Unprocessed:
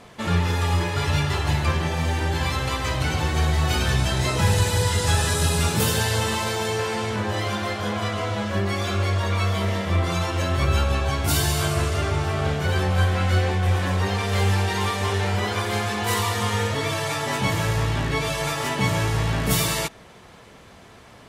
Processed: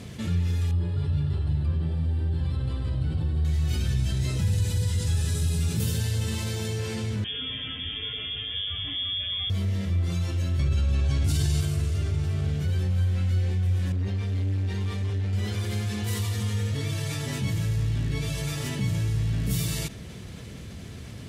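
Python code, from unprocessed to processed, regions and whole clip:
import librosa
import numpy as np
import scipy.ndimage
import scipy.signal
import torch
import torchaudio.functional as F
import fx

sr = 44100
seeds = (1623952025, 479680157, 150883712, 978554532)

y = fx.chain(x, sr, fx.moving_average(points=7),
    fx.peak_eq(hz=2200.0, db=-12.0, octaves=0.72), at=(0.71, 3.45))
y = fx.chain(y, sr, fx.peak_eq(hz=710.0, db=-10.0, octaves=2.9),
    fx.freq_invert(carrier_hz=3400), at=(7.24, 9.5))
y = fx.chain(y, sr, fx.lowpass(hz=9400.0, slope=12),
    fx.env_flatten(amount_pct=100), at=(10.59, 11.61))
y = fx.chain(y, sr, fx.lowpass(hz=2800.0, slope=6),
    fx.transformer_sat(knee_hz=340.0), at=(13.92, 15.33))
y = scipy.signal.sosfilt(scipy.signal.butter(2, 74.0, 'highpass', fs=sr, output='sos'), y)
y = fx.tone_stack(y, sr, knobs='10-0-1')
y = fx.env_flatten(y, sr, amount_pct=50)
y = y * 10.0 ** (7.0 / 20.0)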